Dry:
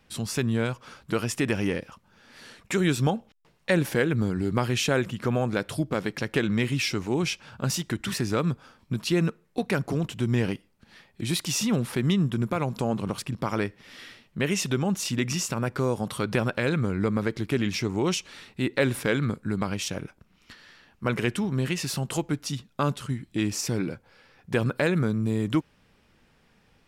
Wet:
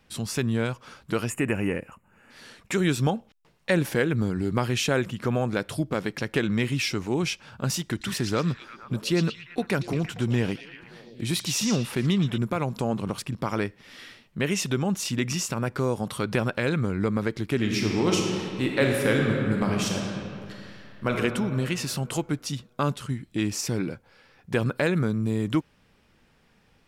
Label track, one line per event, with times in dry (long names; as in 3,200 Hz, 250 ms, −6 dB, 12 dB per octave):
1.290000	2.310000	gain on a spectral selection 3,000–6,600 Hz −18 dB
7.810000	12.380000	echo through a band-pass that steps 116 ms, band-pass from 4,900 Hz, each repeat −0.7 octaves, level −4 dB
17.550000	21.160000	thrown reverb, RT60 2.5 s, DRR 0 dB